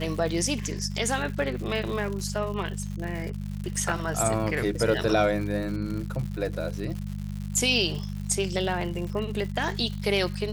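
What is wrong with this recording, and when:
crackle 180 per s -34 dBFS
hum 50 Hz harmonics 4 -33 dBFS

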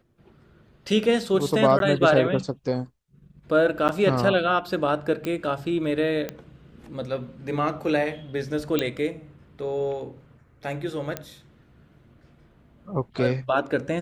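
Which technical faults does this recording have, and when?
1.79–1.80 s: dropout 12 ms
3.88–3.89 s: dropout 8.8 ms
5.25 s: pop -17 dBFS
6.29 s: pop -16 dBFS
8.79 s: pop -8 dBFS
11.17 s: pop -13 dBFS

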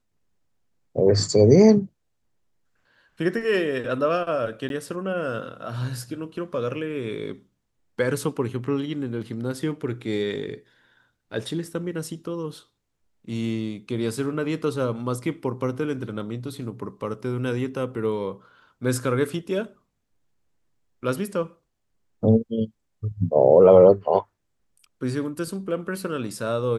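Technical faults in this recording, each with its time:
4.69–4.70 s: dropout

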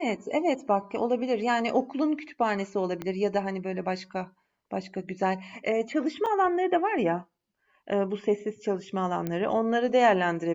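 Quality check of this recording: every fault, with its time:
3.02 s: pop -20 dBFS
6.26–6.27 s: dropout 5.9 ms
9.27 s: pop -18 dBFS

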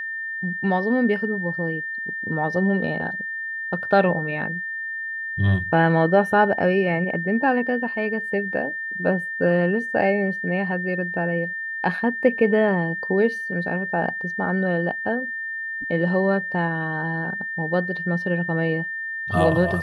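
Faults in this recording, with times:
whine 1.8 kHz -27 dBFS

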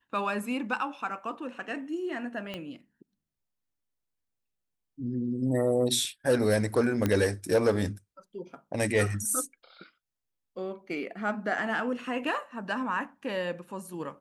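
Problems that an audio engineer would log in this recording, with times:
2.54 s: pop -22 dBFS
7.06 s: pop -13 dBFS

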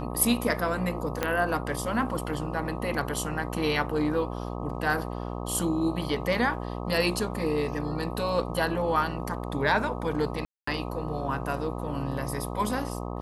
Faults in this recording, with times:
buzz 60 Hz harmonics 21 -34 dBFS
1.23 s: pop -11 dBFS
10.45–10.67 s: dropout 224 ms

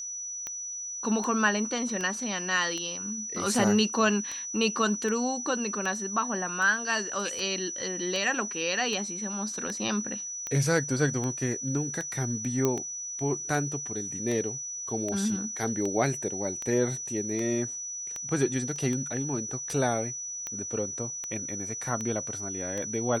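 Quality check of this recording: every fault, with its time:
tick 78 rpm -20 dBFS
whine 5.9 kHz -34 dBFS
12.65 s: pop -12 dBFS
18.76 s: dropout 2.2 ms

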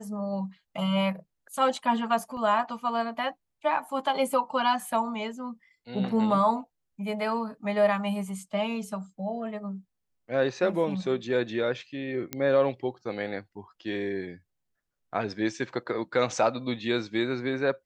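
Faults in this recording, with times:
2.37 s: dropout 2 ms
12.33 s: pop -14 dBFS

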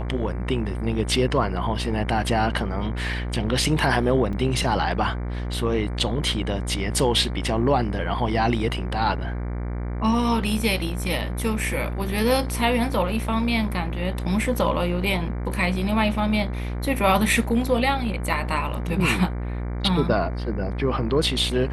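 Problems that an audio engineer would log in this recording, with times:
buzz 60 Hz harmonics 39 -28 dBFS
4.33 s: dropout 4.1 ms

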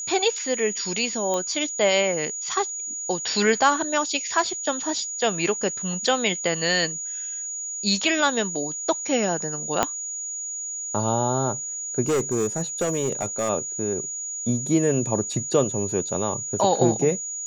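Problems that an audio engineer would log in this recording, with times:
whine 6.8 kHz -29 dBFS
1.34 s: pop -13 dBFS
9.83 s: pop -5 dBFS
12.02–13.49 s: clipped -18.5 dBFS

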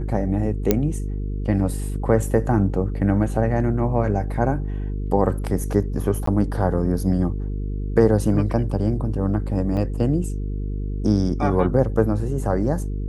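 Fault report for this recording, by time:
buzz 50 Hz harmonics 9 -26 dBFS
0.71 s: pop -3 dBFS
6.26–6.27 s: dropout 14 ms
9.77 s: dropout 3.2 ms

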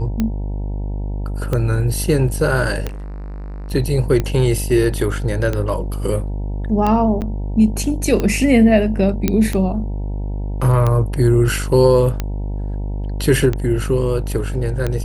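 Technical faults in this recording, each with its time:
buzz 50 Hz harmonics 19 -23 dBFS
tick 45 rpm -8 dBFS
2.87–3.72 s: clipped -27.5 dBFS
7.21–7.22 s: dropout 8.9 ms
9.28 s: pop -3 dBFS

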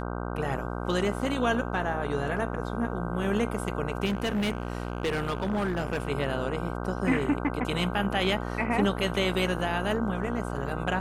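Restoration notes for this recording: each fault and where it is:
buzz 60 Hz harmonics 26 -33 dBFS
4.05–6.07 s: clipped -24 dBFS

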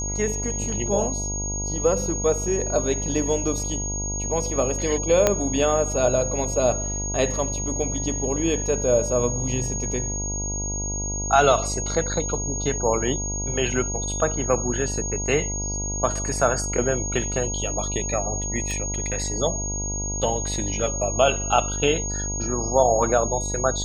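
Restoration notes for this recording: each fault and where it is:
buzz 50 Hz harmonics 20 -30 dBFS
whine 6.6 kHz -28 dBFS
5.27 s: pop -4 dBFS
18.71 s: pop

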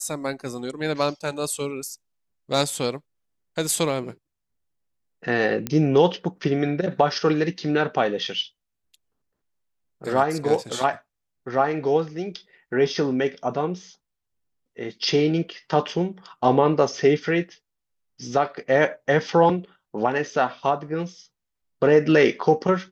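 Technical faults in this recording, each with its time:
5.67 s: pop -10 dBFS

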